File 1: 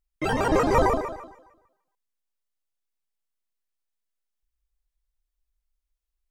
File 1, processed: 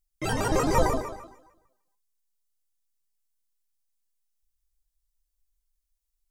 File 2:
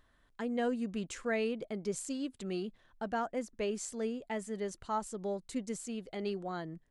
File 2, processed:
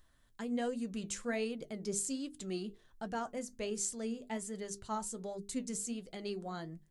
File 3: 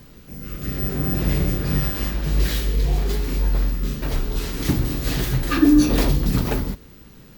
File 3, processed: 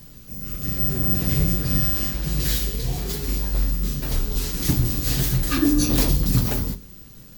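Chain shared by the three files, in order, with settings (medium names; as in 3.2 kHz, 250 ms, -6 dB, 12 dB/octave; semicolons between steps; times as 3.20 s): tone controls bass +6 dB, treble +11 dB; hum notches 50/100/150/200/250/300/350/400/450 Hz; flange 1.3 Hz, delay 5.3 ms, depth 5 ms, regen +66%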